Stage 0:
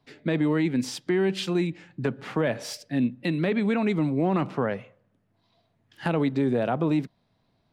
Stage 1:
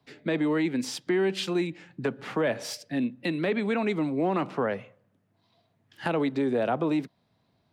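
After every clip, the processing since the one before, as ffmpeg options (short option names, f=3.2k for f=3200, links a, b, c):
-filter_complex "[0:a]highpass=58,acrossover=split=240|690|4000[a][b][c][d];[a]acompressor=threshold=-39dB:ratio=6[e];[e][b][c][d]amix=inputs=4:normalize=0"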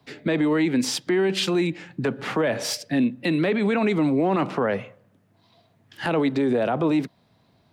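-af "alimiter=limit=-23dB:level=0:latency=1:release=25,volume=8.5dB"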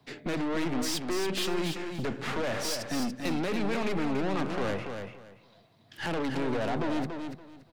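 -af "aeval=exprs='(tanh(28.2*val(0)+0.55)-tanh(0.55))/28.2':c=same,aecho=1:1:285|570|855:0.473|0.104|0.0229"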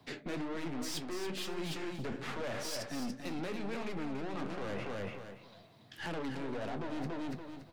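-af "areverse,acompressor=threshold=-39dB:ratio=6,areverse,flanger=delay=10:depth=6.2:regen=-53:speed=1.8:shape=triangular,volume=7dB"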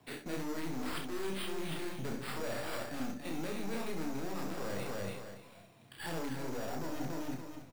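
-filter_complex "[0:a]acrusher=samples=7:mix=1:aa=0.000001,asplit=2[a][b];[b]aecho=0:1:31|67:0.562|0.422[c];[a][c]amix=inputs=2:normalize=0,volume=-2dB"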